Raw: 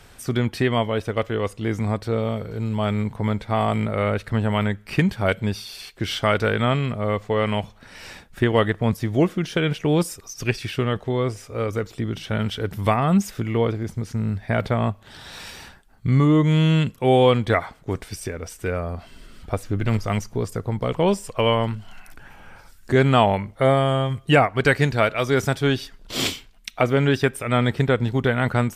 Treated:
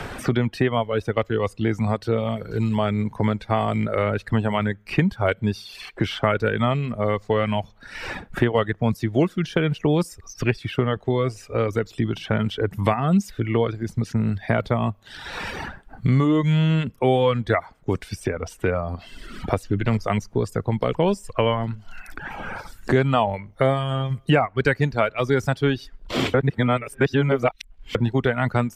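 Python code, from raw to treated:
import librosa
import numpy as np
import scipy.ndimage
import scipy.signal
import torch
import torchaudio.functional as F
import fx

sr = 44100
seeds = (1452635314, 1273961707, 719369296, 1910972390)

y = fx.edit(x, sr, fx.reverse_span(start_s=26.34, length_s=1.61), tone=tone)
y = fx.dereverb_blind(y, sr, rt60_s=0.99)
y = fx.high_shelf(y, sr, hz=4600.0, db=-11.0)
y = fx.band_squash(y, sr, depth_pct=70)
y = F.gain(torch.from_numpy(y), 1.0).numpy()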